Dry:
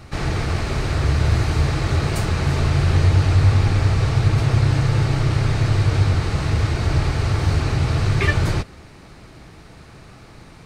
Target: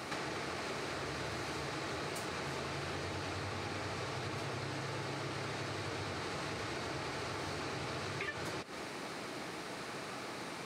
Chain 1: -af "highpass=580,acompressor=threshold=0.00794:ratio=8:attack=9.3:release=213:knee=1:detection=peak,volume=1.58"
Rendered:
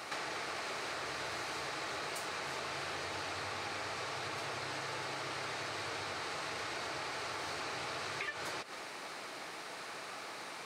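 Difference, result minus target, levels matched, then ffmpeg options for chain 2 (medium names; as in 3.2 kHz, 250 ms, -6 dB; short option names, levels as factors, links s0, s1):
250 Hz band -7.5 dB
-af "highpass=290,acompressor=threshold=0.00794:ratio=8:attack=9.3:release=213:knee=1:detection=peak,volume=1.58"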